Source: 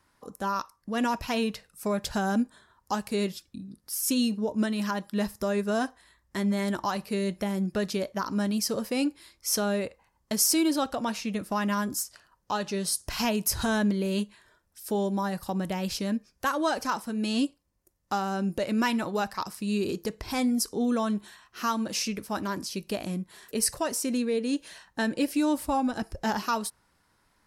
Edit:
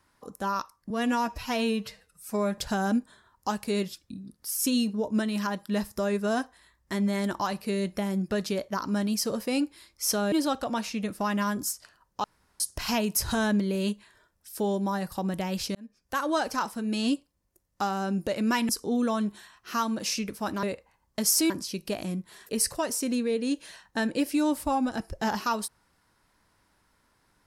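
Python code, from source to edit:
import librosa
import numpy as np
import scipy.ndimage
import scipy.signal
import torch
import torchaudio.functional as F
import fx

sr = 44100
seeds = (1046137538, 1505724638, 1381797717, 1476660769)

y = fx.edit(x, sr, fx.stretch_span(start_s=0.9, length_s=1.12, factor=1.5),
    fx.move(start_s=9.76, length_s=0.87, to_s=22.52),
    fx.room_tone_fill(start_s=12.55, length_s=0.36),
    fx.fade_in_span(start_s=16.06, length_s=0.52),
    fx.cut(start_s=19.0, length_s=1.58), tone=tone)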